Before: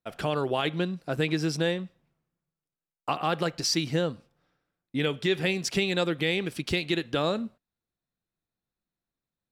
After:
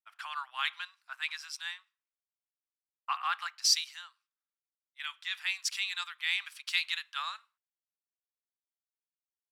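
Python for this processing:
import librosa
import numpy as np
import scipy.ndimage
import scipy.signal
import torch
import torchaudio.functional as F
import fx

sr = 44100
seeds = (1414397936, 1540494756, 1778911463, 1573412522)

y = fx.rider(x, sr, range_db=10, speed_s=0.5)
y = scipy.signal.sosfilt(scipy.signal.butter(8, 1000.0, 'highpass', fs=sr, output='sos'), y)
y = fx.band_widen(y, sr, depth_pct=100)
y = y * librosa.db_to_amplitude(-3.0)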